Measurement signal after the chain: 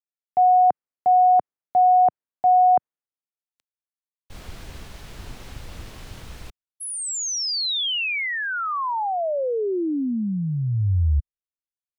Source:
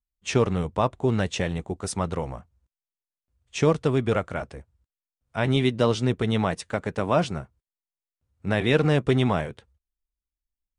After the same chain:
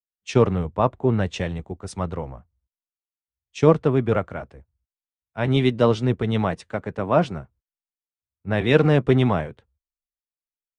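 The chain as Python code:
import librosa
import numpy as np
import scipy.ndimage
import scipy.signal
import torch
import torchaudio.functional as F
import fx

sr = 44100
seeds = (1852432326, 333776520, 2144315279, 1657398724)

y = fx.lowpass(x, sr, hz=2200.0, slope=6)
y = fx.band_widen(y, sr, depth_pct=70)
y = y * 10.0 ** (2.5 / 20.0)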